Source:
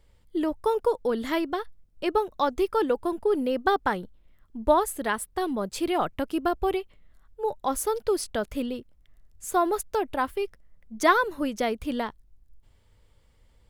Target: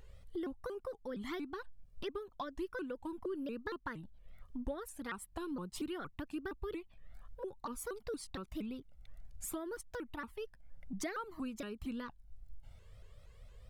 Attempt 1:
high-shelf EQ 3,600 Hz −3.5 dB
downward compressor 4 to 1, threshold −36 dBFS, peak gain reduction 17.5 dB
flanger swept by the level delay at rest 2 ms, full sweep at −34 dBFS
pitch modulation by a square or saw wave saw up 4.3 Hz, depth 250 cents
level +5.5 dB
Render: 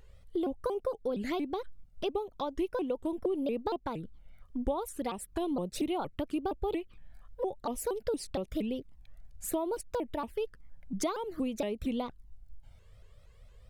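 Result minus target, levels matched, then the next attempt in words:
downward compressor: peak gain reduction −6 dB
high-shelf EQ 3,600 Hz −3.5 dB
downward compressor 4 to 1, threshold −44 dBFS, peak gain reduction 23.5 dB
flanger swept by the level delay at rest 2 ms, full sweep at −34 dBFS
pitch modulation by a square or saw wave saw up 4.3 Hz, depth 250 cents
level +5.5 dB

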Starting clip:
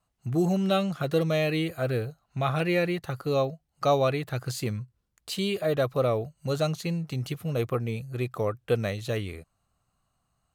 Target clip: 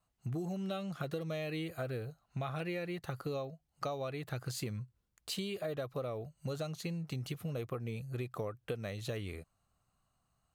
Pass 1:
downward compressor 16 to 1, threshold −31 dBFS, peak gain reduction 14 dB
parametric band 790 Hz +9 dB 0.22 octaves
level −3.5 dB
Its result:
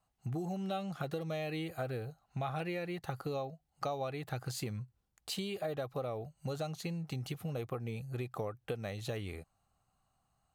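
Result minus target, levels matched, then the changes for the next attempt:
1,000 Hz band +3.5 dB
remove: parametric band 790 Hz +9 dB 0.22 octaves

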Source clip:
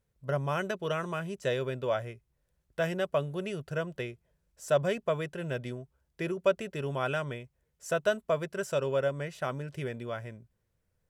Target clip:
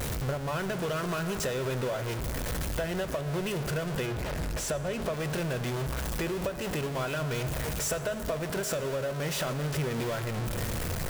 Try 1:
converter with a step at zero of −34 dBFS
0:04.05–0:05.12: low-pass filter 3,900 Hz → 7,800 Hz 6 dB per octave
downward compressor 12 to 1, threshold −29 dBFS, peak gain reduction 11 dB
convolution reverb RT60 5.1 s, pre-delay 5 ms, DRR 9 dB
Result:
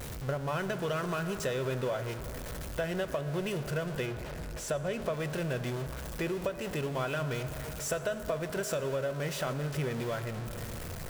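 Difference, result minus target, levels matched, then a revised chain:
converter with a step at zero: distortion −6 dB
converter with a step at zero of −26 dBFS
0:04.05–0:05.12: low-pass filter 3,900 Hz → 7,800 Hz 6 dB per octave
downward compressor 12 to 1, threshold −29 dBFS, peak gain reduction 12 dB
convolution reverb RT60 5.1 s, pre-delay 5 ms, DRR 9 dB

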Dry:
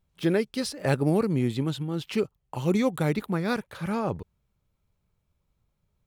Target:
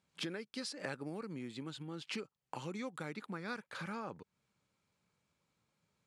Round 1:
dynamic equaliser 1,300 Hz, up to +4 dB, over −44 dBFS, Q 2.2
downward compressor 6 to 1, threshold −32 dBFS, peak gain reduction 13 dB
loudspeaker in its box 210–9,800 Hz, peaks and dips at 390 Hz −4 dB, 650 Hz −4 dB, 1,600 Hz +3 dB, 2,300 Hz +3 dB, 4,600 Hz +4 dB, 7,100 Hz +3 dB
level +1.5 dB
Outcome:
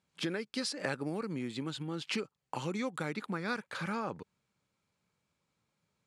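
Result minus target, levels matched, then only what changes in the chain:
downward compressor: peak gain reduction −6.5 dB
change: downward compressor 6 to 1, threshold −40 dBFS, peak gain reduction 19.5 dB

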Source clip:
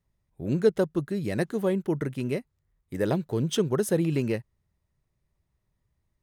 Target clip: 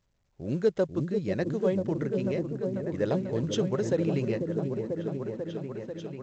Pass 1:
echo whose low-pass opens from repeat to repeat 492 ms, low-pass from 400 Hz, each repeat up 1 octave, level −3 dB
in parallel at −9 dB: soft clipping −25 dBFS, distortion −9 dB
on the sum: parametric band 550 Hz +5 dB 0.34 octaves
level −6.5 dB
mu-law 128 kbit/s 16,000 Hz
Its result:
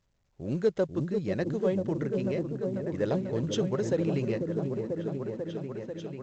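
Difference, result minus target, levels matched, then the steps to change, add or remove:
soft clipping: distortion +12 dB
change: soft clipping −14 dBFS, distortion −21 dB

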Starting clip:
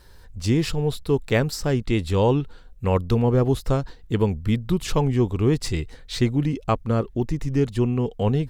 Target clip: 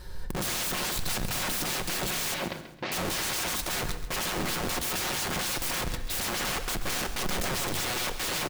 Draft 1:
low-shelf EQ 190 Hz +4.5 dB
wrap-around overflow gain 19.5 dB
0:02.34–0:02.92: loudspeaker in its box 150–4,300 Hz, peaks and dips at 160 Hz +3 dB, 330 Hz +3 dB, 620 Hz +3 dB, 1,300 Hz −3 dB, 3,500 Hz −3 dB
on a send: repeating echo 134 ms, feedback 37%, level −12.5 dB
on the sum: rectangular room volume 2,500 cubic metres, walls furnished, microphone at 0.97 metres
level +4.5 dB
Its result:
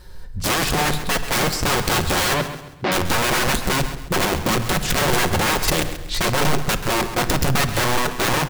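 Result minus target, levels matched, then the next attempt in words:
wrap-around overflow: distortion −9 dB
low-shelf EQ 190 Hz +4.5 dB
wrap-around overflow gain 31 dB
0:02.34–0:02.92: loudspeaker in its box 150–4,300 Hz, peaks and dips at 160 Hz +3 dB, 330 Hz +3 dB, 620 Hz +3 dB, 1,300 Hz −3 dB, 3,500 Hz −3 dB
on a send: repeating echo 134 ms, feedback 37%, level −12.5 dB
on the sum: rectangular room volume 2,500 cubic metres, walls furnished, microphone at 0.97 metres
level +4.5 dB

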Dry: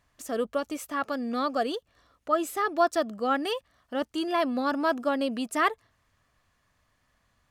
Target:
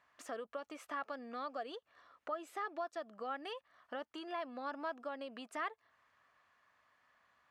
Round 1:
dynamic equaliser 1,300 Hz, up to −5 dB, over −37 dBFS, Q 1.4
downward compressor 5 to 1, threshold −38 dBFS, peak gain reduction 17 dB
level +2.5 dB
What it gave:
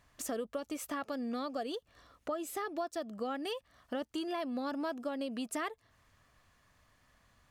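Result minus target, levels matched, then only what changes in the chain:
1,000 Hz band −4.0 dB
add after downward compressor: resonant band-pass 1,300 Hz, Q 0.85

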